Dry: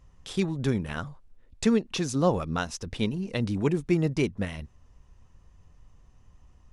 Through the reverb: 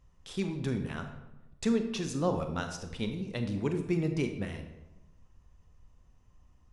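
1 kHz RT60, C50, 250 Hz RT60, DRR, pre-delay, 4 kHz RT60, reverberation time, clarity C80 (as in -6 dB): 0.95 s, 7.5 dB, 1.2 s, 6.0 dB, 26 ms, 0.65 s, 1.0 s, 10.0 dB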